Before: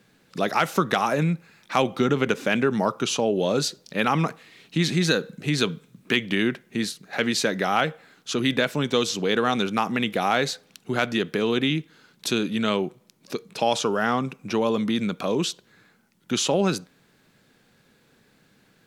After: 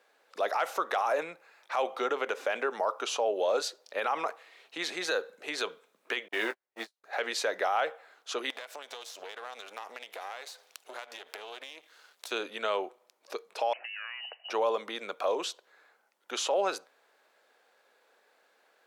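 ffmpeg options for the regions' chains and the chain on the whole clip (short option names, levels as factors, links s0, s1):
-filter_complex "[0:a]asettb=1/sr,asplit=3[s0][s1][s2];[s0]atrim=end=6.284[s3];[s1]atrim=start=6.28:end=7.04,asetpts=PTS-STARTPTS,afade=t=in:d=0.004:c=qsin,afade=t=out:st=0.756:d=0.004:c=qsin,aeval=exprs='val(0)+0.5*0.0299*sgn(val(0))':c=same,agate=range=0.00251:threshold=0.0708:ratio=16:release=100:detection=peak,asplit=2[s4][s5];[s5]adelay=18,volume=0.376[s6];[s4][s6]amix=inputs=2:normalize=0,atrim=end_sample=33516[s7];[s2]atrim=start=7.036[s8];[s3][s7]acrossfade=d=0.004:c1=hsin:c2=qsin[s9];[s9][s8]acrossfade=d=0.004:c1=qsin:c2=hsin,asettb=1/sr,asplit=3[s10][s11][s12];[s10]atrim=end=8.504[s13];[s11]atrim=start=8.5:end=12.31,asetpts=PTS-STARTPTS,afade=t=in:d=0.004:c=qsin,afade=t=out:st=3.806:d=0.004:c=qsin,aeval=exprs='if(lt(val(0),0),0.251*val(0),val(0))':c=same,highshelf=f=2000:g=11.5,acompressor=threshold=0.0251:ratio=12:attack=3.2:release=140:knee=1:detection=peak[s14];[s12]atrim=start=12.306[s15];[s13][s14]acrossfade=d=0.004:c1=hsin:c2=qsin[s16];[s16][s15]acrossfade=d=0.004:c1=qsin:c2=hsin,asettb=1/sr,asplit=3[s17][s18][s19];[s17]atrim=end=13.734[s20];[s18]atrim=start=13.73:end=14.5,asetpts=PTS-STARTPTS,afade=t=in:d=0.004:c=qsin,afade=t=out:st=0.766:d=0.004:c=qsin,acompressor=threshold=0.0282:ratio=6:attack=3.2:release=140:knee=1:detection=peak,lowpass=f=2600:t=q:w=0.5098,lowpass=f=2600:t=q:w=0.6013,lowpass=f=2600:t=q:w=0.9,lowpass=f=2600:t=q:w=2.563,afreqshift=-3100[s21];[s19]atrim=start=14.496[s22];[s20][s21]acrossfade=d=0.004:c1=hsin:c2=qsin[s23];[s23][s22]acrossfade=d=0.004:c1=qsin:c2=hsin,highpass=f=570:w=0.5412,highpass=f=570:w=1.3066,tiltshelf=f=1300:g=7,alimiter=limit=0.141:level=0:latency=1:release=29,volume=0.794"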